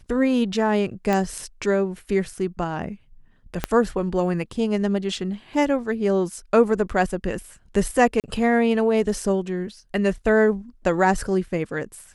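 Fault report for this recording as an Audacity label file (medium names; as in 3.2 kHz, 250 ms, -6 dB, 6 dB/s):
1.130000	1.130000	pop -10 dBFS
3.640000	3.640000	pop -7 dBFS
8.200000	8.240000	dropout 38 ms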